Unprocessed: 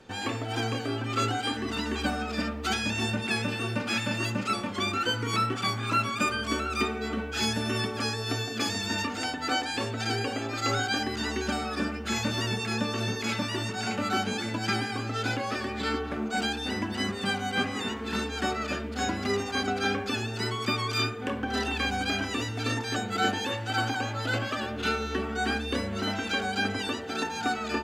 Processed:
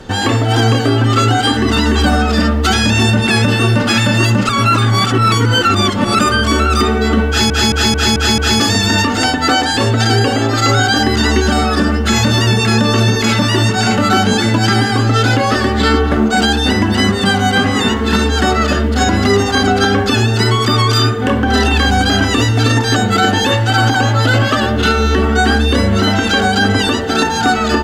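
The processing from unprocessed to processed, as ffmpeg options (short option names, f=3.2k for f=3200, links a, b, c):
-filter_complex "[0:a]asplit=9[a][b][c][d][e][f][g][h][i];[a]atrim=end=4.492[j];[b]atrim=start=4.488:end=6.192,asetpts=PTS-STARTPTS,areverse[k];[c]atrim=start=6.188:end=7.502[l];[d]atrim=start=7.278:end=7.502[m];[e]atrim=start=7.278:end=7.502[n];[f]atrim=start=7.278:end=7.502[o];[g]atrim=start=7.278:end=7.502[p];[h]atrim=start=7.278:end=7.502[q];[i]atrim=start=8.598[r];[j][k]acrossfade=d=0.004:c1=hsin:c2=hsin[s];[s][l]acrossfade=d=0.004:c1=hsin:c2=hsin[t];[t][m]acrossfade=d=0.004:c1=hsin:c2=hsin[u];[u][n]acrossfade=d=0.004:c1=hsin:c2=hsin[v];[v][o]acrossfade=d=0.004:c1=hsin:c2=hsin[w];[w][p]acrossfade=d=0.004:c1=hsin:c2=hsin[x];[x][q]acrossfade=d=0.004:c1=hsin:c2=hsin[y];[y][r]acrossfade=d=0.004:c1=hsin:c2=hsin,lowshelf=f=100:g=10.5,bandreject=f=2.4k:w=8.5,alimiter=level_in=19.5dB:limit=-1dB:release=50:level=0:latency=1,volume=-2dB"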